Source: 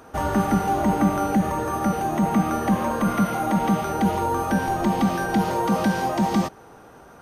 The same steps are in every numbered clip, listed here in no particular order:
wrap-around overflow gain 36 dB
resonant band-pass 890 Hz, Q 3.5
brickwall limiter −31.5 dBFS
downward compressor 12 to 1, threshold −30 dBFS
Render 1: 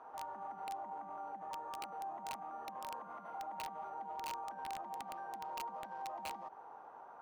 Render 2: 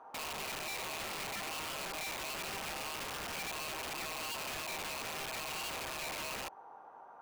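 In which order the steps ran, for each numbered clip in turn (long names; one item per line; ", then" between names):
brickwall limiter, then downward compressor, then resonant band-pass, then wrap-around overflow
resonant band-pass, then downward compressor, then brickwall limiter, then wrap-around overflow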